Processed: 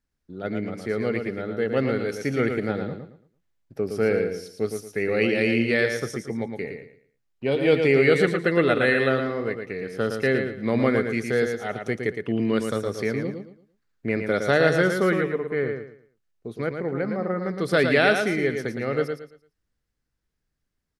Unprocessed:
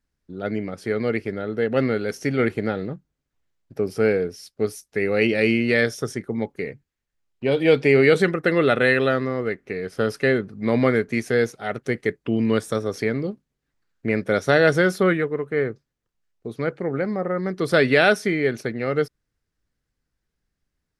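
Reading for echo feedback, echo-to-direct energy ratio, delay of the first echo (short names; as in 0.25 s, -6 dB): 28%, -5.5 dB, 0.113 s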